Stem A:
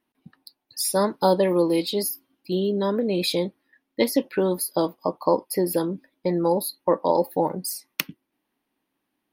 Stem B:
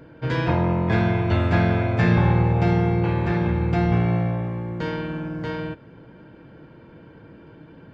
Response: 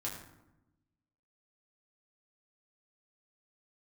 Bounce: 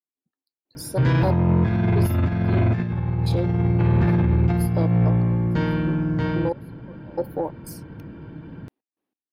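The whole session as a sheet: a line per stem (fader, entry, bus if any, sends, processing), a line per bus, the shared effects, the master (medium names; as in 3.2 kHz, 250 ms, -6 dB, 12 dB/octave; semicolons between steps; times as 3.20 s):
-11.0 dB, 0.00 s, no send, peaking EQ 420 Hz +9.5 dB 2 oct; trance gate "....xx.x" 92 bpm -24 dB
+2.5 dB, 0.75 s, no send, tilt shelf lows +5 dB, about 890 Hz; compressor with a negative ratio -18 dBFS, ratio -0.5; peaking EQ 500 Hz -7.5 dB 1.2 oct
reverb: none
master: saturation -11.5 dBFS, distortion -16 dB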